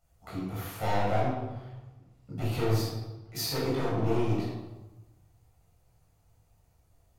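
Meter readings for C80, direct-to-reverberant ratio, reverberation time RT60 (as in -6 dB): 3.0 dB, -7.5 dB, 1.1 s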